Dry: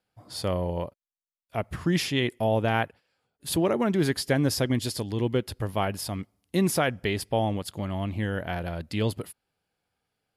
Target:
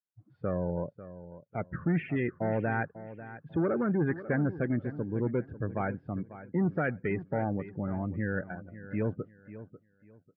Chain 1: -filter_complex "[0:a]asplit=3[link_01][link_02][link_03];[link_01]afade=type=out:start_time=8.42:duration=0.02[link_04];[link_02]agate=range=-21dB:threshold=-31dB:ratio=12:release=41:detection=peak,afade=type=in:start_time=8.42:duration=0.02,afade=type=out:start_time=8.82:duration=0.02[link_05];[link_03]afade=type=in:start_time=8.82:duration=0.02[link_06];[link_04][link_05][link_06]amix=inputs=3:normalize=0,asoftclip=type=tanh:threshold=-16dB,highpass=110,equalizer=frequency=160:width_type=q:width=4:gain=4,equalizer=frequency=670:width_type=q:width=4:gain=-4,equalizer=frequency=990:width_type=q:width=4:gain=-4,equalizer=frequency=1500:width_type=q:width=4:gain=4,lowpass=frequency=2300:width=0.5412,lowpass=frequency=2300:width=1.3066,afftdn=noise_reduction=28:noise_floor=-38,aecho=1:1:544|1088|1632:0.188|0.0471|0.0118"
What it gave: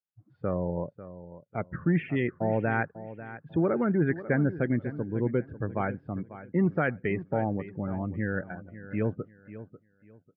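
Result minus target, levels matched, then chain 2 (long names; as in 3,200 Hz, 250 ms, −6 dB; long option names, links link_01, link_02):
soft clipping: distortion −8 dB
-filter_complex "[0:a]asplit=3[link_01][link_02][link_03];[link_01]afade=type=out:start_time=8.42:duration=0.02[link_04];[link_02]agate=range=-21dB:threshold=-31dB:ratio=12:release=41:detection=peak,afade=type=in:start_time=8.42:duration=0.02,afade=type=out:start_time=8.82:duration=0.02[link_05];[link_03]afade=type=in:start_time=8.82:duration=0.02[link_06];[link_04][link_05][link_06]amix=inputs=3:normalize=0,asoftclip=type=tanh:threshold=-23dB,highpass=110,equalizer=frequency=160:width_type=q:width=4:gain=4,equalizer=frequency=670:width_type=q:width=4:gain=-4,equalizer=frequency=990:width_type=q:width=4:gain=-4,equalizer=frequency=1500:width_type=q:width=4:gain=4,lowpass=frequency=2300:width=0.5412,lowpass=frequency=2300:width=1.3066,afftdn=noise_reduction=28:noise_floor=-38,aecho=1:1:544|1088|1632:0.188|0.0471|0.0118"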